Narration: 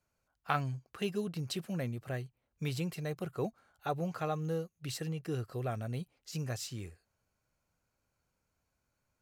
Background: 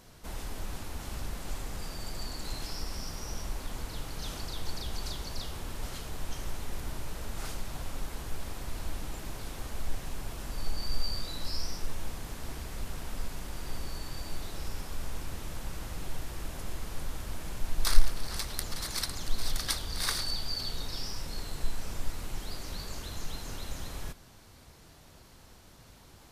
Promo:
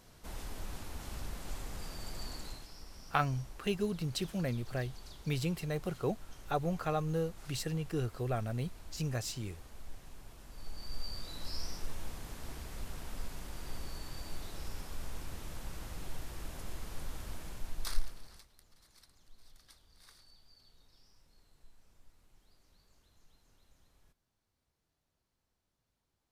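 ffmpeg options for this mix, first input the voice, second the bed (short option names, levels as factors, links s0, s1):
-filter_complex "[0:a]adelay=2650,volume=1.19[s0];[1:a]volume=1.68,afade=t=out:st=2.35:d=0.31:silence=0.334965,afade=t=in:st=10.5:d=1.13:silence=0.354813,afade=t=out:st=17.29:d=1.19:silence=0.0630957[s1];[s0][s1]amix=inputs=2:normalize=0"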